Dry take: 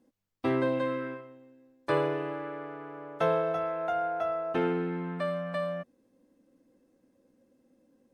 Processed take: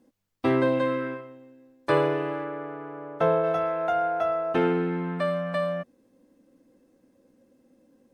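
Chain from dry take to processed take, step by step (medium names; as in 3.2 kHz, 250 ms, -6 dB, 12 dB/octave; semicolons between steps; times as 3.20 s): 2.43–3.43 s: treble shelf 3.5 kHz -> 2.1 kHz -10.5 dB; trim +5 dB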